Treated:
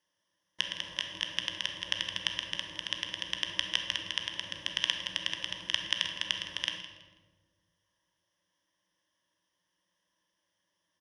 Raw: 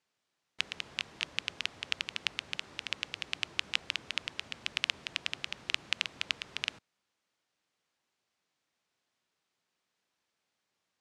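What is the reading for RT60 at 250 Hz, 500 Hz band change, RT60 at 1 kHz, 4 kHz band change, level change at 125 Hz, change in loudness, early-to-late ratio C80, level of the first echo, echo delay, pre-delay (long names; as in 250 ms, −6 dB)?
1.9 s, +3.0 dB, 1.2 s, +4.5 dB, +3.5 dB, +2.5 dB, 8.0 dB, −15.0 dB, 163 ms, 15 ms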